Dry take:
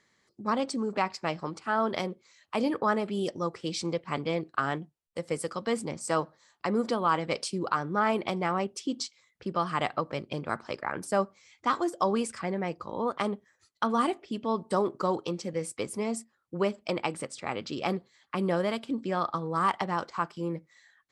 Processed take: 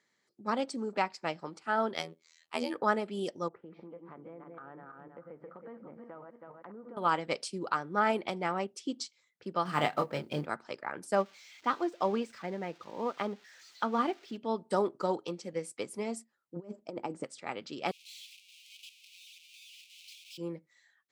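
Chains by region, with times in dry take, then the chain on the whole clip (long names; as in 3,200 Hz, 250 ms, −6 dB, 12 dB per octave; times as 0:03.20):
0:01.94–0:02.75: high-shelf EQ 2,000 Hz +7 dB + phases set to zero 81.3 Hz
0:03.48–0:06.97: feedback delay that plays each chunk backwards 160 ms, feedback 47%, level −6.5 dB + low-pass filter 1,600 Hz 24 dB per octave + downward compressor 5 to 1, threshold −37 dBFS
0:09.65–0:10.46: mu-law and A-law mismatch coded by mu + low-shelf EQ 240 Hz +4.5 dB + double-tracking delay 27 ms −5.5 dB
0:11.15–0:14.37: spike at every zero crossing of −29.5 dBFS + high-frequency loss of the air 180 metres
0:16.56–0:17.24: drawn EQ curve 170 Hz 0 dB, 300 Hz +3 dB, 970 Hz −5 dB, 1,900 Hz −13 dB, 3,800 Hz −17 dB, 7,000 Hz −5 dB, 12,000 Hz −28 dB + compressor whose output falls as the input rises −32 dBFS, ratio −0.5
0:17.91–0:20.38: sign of each sample alone + Butterworth high-pass 2,400 Hz 96 dB per octave + spectral tilt −4.5 dB per octave
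whole clip: Bessel high-pass filter 190 Hz, order 2; notch filter 1,100 Hz, Q 11; expander for the loud parts 1.5 to 1, over −37 dBFS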